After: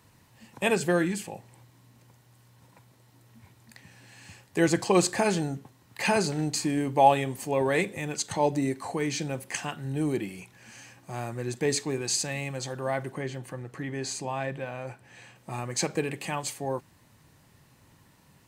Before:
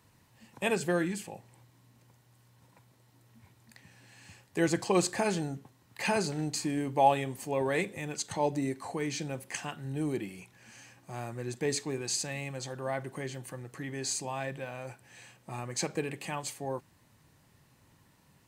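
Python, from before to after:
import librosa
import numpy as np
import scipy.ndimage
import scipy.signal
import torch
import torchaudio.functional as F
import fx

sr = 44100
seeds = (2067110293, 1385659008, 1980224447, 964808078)

y = fx.high_shelf(x, sr, hz=4600.0, db=-9.5, at=(13.12, 15.36))
y = y * librosa.db_to_amplitude(4.5)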